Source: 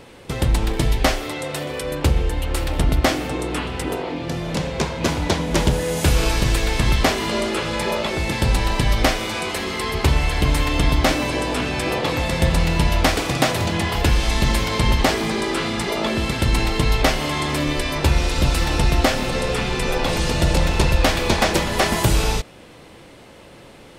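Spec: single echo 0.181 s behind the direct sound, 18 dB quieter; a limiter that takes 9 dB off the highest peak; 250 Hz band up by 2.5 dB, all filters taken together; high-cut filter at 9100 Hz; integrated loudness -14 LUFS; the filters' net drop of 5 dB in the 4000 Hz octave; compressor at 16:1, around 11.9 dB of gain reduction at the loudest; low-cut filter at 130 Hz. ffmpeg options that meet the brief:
-af "highpass=130,lowpass=9.1k,equalizer=f=250:t=o:g=4,equalizer=f=4k:t=o:g=-6.5,acompressor=threshold=-24dB:ratio=16,alimiter=limit=-19.5dB:level=0:latency=1,aecho=1:1:181:0.126,volume=15.5dB"

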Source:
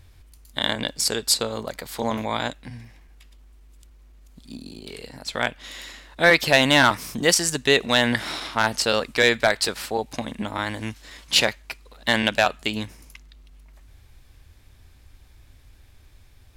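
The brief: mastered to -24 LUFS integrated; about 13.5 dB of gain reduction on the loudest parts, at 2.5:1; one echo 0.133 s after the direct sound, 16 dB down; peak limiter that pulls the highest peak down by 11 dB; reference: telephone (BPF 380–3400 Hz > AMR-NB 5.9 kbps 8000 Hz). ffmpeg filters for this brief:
-af "acompressor=threshold=-33dB:ratio=2.5,alimiter=level_in=0.5dB:limit=-24dB:level=0:latency=1,volume=-0.5dB,highpass=380,lowpass=3.4k,aecho=1:1:133:0.158,volume=18dB" -ar 8000 -c:a libopencore_amrnb -b:a 5900

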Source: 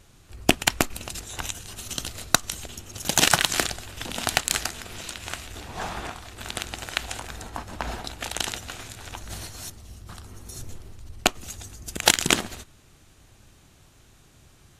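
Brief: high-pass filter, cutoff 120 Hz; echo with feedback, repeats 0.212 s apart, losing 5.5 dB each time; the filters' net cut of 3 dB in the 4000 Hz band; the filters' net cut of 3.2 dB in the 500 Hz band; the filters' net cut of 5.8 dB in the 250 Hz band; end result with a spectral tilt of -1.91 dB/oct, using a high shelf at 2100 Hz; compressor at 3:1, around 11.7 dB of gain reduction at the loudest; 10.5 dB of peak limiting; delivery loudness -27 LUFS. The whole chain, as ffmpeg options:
-af "highpass=120,equalizer=f=250:t=o:g=-6.5,equalizer=f=500:t=o:g=-3,highshelf=f=2.1k:g=3.5,equalizer=f=4k:t=o:g=-7.5,acompressor=threshold=-31dB:ratio=3,alimiter=limit=-19.5dB:level=0:latency=1,aecho=1:1:212|424|636|848|1060|1272|1484:0.531|0.281|0.149|0.079|0.0419|0.0222|0.0118,volume=9.5dB"

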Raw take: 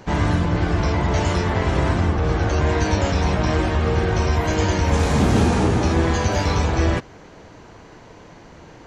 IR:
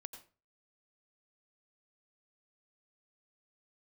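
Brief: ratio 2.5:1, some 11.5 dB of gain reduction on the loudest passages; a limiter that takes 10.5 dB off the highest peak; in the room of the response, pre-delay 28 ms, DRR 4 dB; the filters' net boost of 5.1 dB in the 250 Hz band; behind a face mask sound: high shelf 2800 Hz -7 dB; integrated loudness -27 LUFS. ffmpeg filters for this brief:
-filter_complex "[0:a]equalizer=f=250:t=o:g=7,acompressor=threshold=-27dB:ratio=2.5,alimiter=level_in=0.5dB:limit=-24dB:level=0:latency=1,volume=-0.5dB,asplit=2[a][b];[1:a]atrim=start_sample=2205,adelay=28[c];[b][c]afir=irnorm=-1:irlink=0,volume=1dB[d];[a][d]amix=inputs=2:normalize=0,highshelf=f=2.8k:g=-7,volume=5.5dB"

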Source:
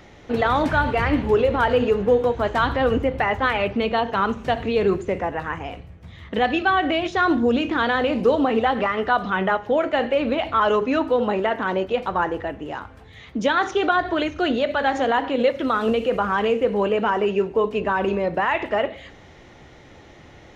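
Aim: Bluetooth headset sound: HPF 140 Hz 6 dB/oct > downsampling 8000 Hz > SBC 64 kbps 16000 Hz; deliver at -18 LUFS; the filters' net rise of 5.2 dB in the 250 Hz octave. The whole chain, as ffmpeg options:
-af "highpass=f=140:p=1,equalizer=f=250:t=o:g=7.5,aresample=8000,aresample=44100,volume=1.5dB" -ar 16000 -c:a sbc -b:a 64k

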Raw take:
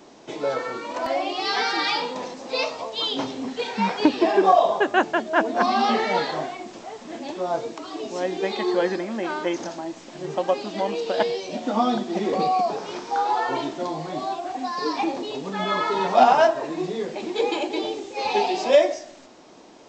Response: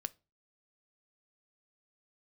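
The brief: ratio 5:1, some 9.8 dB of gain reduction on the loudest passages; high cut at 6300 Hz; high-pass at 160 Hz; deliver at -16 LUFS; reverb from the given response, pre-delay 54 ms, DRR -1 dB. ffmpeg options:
-filter_complex "[0:a]highpass=160,lowpass=6.3k,acompressor=threshold=-22dB:ratio=5,asplit=2[a][b];[1:a]atrim=start_sample=2205,adelay=54[c];[b][c]afir=irnorm=-1:irlink=0,volume=2.5dB[d];[a][d]amix=inputs=2:normalize=0,volume=8.5dB"

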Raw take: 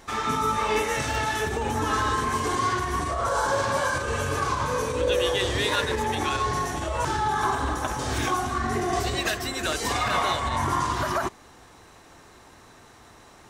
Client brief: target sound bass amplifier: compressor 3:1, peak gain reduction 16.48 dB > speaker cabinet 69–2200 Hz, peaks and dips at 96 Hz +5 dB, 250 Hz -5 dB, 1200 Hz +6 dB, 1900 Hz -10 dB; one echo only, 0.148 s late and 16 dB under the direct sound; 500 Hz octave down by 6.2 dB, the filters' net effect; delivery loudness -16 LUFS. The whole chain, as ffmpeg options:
-af "equalizer=f=500:t=o:g=-7.5,aecho=1:1:148:0.158,acompressor=threshold=-44dB:ratio=3,highpass=f=69:w=0.5412,highpass=f=69:w=1.3066,equalizer=f=96:t=q:w=4:g=5,equalizer=f=250:t=q:w=4:g=-5,equalizer=f=1.2k:t=q:w=4:g=6,equalizer=f=1.9k:t=q:w=4:g=-10,lowpass=f=2.2k:w=0.5412,lowpass=f=2.2k:w=1.3066,volume=25dB"

